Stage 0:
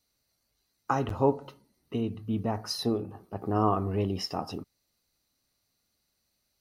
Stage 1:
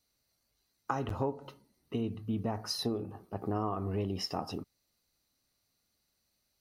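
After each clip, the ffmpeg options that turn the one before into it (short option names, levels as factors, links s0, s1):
-af "acompressor=threshold=0.0447:ratio=6,volume=0.841"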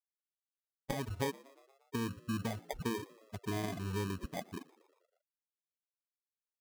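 -filter_complex "[0:a]afftfilt=real='re*gte(hypot(re,im),0.0708)':imag='im*gte(hypot(re,im),0.0708)':win_size=1024:overlap=0.75,acrusher=samples=32:mix=1:aa=0.000001,asplit=6[s0][s1][s2][s3][s4][s5];[s1]adelay=118,afreqshift=66,volume=0.075[s6];[s2]adelay=236,afreqshift=132,volume=0.0462[s7];[s3]adelay=354,afreqshift=198,volume=0.0288[s8];[s4]adelay=472,afreqshift=264,volume=0.0178[s9];[s5]adelay=590,afreqshift=330,volume=0.0111[s10];[s0][s6][s7][s8][s9][s10]amix=inputs=6:normalize=0,volume=0.75"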